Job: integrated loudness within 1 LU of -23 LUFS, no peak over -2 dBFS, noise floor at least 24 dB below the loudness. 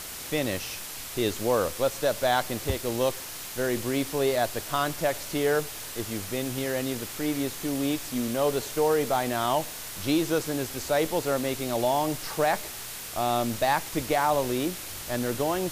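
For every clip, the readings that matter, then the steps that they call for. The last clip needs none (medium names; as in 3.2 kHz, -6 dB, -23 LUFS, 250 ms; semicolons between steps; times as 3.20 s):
noise floor -39 dBFS; noise floor target -52 dBFS; loudness -27.5 LUFS; peak level -12.0 dBFS; loudness target -23.0 LUFS
-> noise reduction 13 dB, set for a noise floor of -39 dBFS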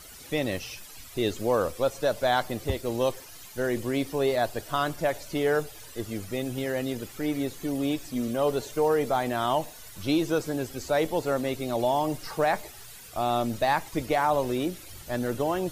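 noise floor -46 dBFS; noise floor target -52 dBFS
-> noise reduction 6 dB, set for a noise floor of -46 dBFS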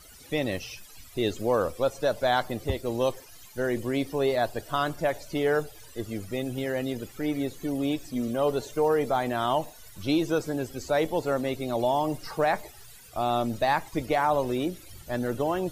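noise floor -49 dBFS; noise floor target -52 dBFS
-> noise reduction 6 dB, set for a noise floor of -49 dBFS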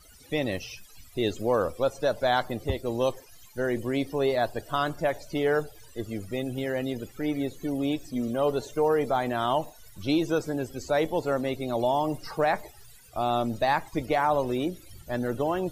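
noise floor -52 dBFS; loudness -28.0 LUFS; peak level -13.0 dBFS; loudness target -23.0 LUFS
-> trim +5 dB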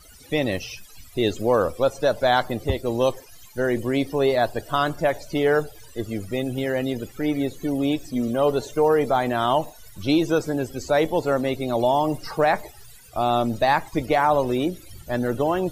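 loudness -23.0 LUFS; peak level -8.0 dBFS; noise floor -47 dBFS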